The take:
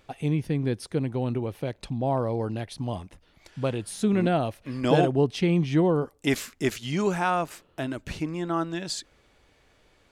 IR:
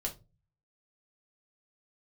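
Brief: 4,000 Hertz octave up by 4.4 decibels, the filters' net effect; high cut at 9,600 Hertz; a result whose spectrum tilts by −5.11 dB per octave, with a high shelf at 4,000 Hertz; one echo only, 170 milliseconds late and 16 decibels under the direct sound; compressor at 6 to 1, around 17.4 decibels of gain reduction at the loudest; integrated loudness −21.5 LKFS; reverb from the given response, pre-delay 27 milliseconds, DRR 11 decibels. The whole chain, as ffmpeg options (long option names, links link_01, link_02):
-filter_complex "[0:a]lowpass=9600,highshelf=frequency=4000:gain=3,equalizer=frequency=4000:width_type=o:gain=4,acompressor=threshold=-35dB:ratio=6,aecho=1:1:170:0.158,asplit=2[link_01][link_02];[1:a]atrim=start_sample=2205,adelay=27[link_03];[link_02][link_03]afir=irnorm=-1:irlink=0,volume=-12.5dB[link_04];[link_01][link_04]amix=inputs=2:normalize=0,volume=17dB"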